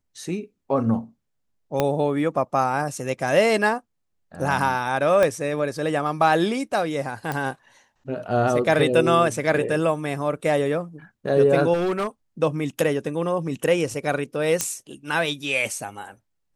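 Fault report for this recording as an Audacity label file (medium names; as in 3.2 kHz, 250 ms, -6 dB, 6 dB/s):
1.800000	1.800000	pop -7 dBFS
5.230000	5.230000	pop -9 dBFS
7.320000	7.320000	pop -14 dBFS
11.730000	12.070000	clipped -20 dBFS
14.610000	14.610000	pop -5 dBFS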